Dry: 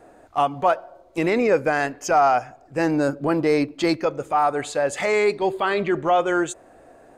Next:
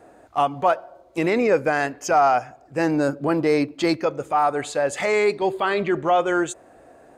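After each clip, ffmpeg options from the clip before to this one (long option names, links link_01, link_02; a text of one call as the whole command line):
ffmpeg -i in.wav -af "highpass=42" out.wav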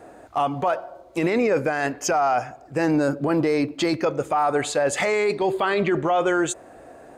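ffmpeg -i in.wav -af "alimiter=limit=-18dB:level=0:latency=1:release=14,volume=4.5dB" out.wav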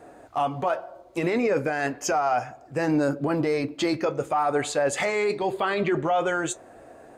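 ffmpeg -i in.wav -af "flanger=delay=6.9:depth=2.4:regen=-63:speed=0.64:shape=sinusoidal,volume=1.5dB" out.wav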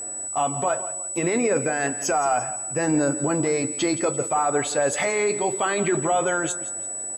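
ffmpeg -i in.wav -af "aeval=exprs='val(0)+0.0282*sin(2*PI*7900*n/s)':channel_layout=same,aecho=1:1:171|342|513:0.178|0.0605|0.0206,volume=1dB" out.wav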